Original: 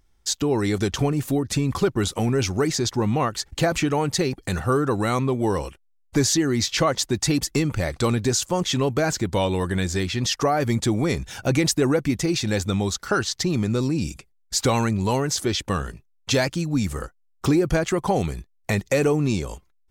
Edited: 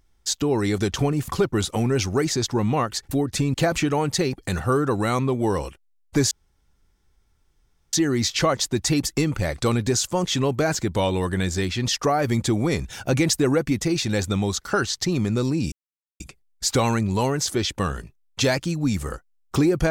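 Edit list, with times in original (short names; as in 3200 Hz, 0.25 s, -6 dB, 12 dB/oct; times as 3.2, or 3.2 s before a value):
1.28–1.71 move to 3.54
6.31 insert room tone 1.62 s
14.1 insert silence 0.48 s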